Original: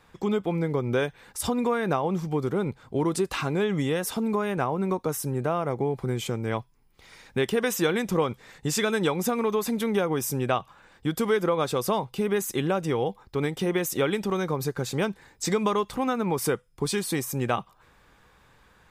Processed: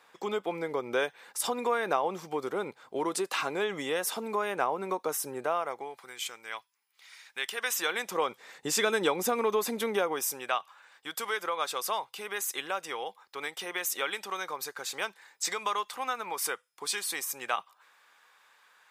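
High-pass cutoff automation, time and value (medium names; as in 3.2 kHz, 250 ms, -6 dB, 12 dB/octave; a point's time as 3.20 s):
5.38 s 500 Hz
6.12 s 1.5 kHz
7.37 s 1.5 kHz
8.66 s 370 Hz
9.85 s 370 Hz
10.50 s 960 Hz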